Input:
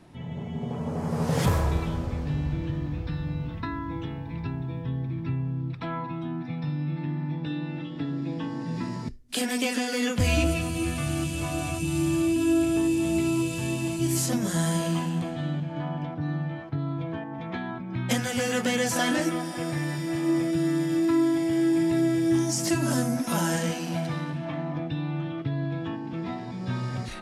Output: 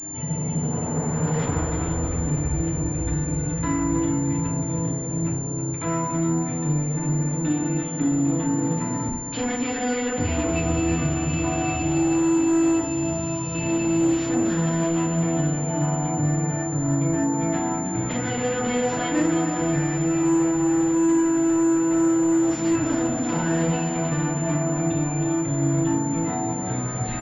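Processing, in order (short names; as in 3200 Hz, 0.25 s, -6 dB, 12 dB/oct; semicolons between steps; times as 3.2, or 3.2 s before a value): in parallel at -1 dB: limiter -22.5 dBFS, peak gain reduction 10.5 dB; 12.8–13.55 on the sum: fixed phaser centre 830 Hz, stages 4; soft clip -26 dBFS, distortion -9 dB; on a send: feedback echo 0.319 s, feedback 51%, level -9.5 dB; on the sum: FDN reverb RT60 0.53 s, low-frequency decay 1.3×, high-frequency decay 0.4×, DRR -1.5 dB; pulse-width modulation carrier 7200 Hz; gain -1.5 dB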